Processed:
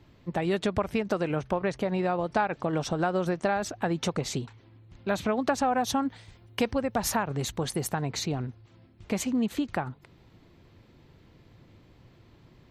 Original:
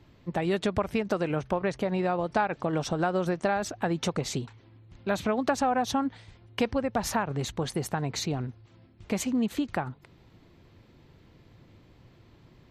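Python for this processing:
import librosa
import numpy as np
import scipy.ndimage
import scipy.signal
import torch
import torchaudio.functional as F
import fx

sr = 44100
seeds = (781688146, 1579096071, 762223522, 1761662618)

y = fx.high_shelf(x, sr, hz=9000.0, db=10.5, at=(5.72, 7.99))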